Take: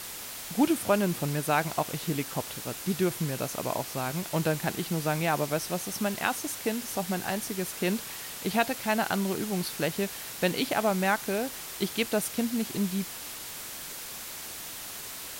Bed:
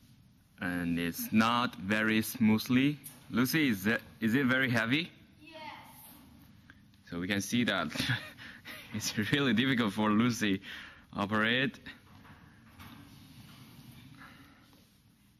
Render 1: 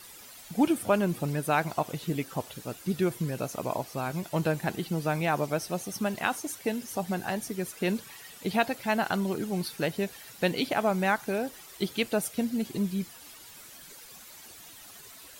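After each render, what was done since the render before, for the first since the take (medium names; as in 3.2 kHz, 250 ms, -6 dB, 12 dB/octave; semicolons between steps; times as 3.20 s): noise reduction 12 dB, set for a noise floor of -40 dBFS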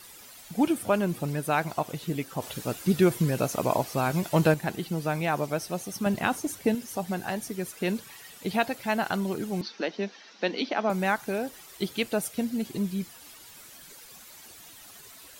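2.42–4.54 s: gain +6 dB; 6.06–6.75 s: bass shelf 380 Hz +10 dB; 9.61–10.90 s: Chebyshev band-pass 200–6000 Hz, order 5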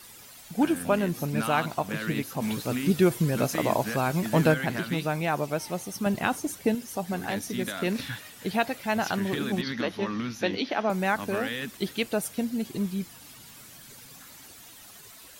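add bed -4.5 dB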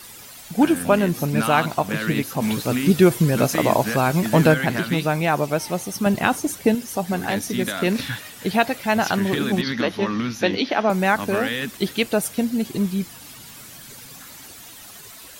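trim +7 dB; peak limiter -2 dBFS, peak gain reduction 1.5 dB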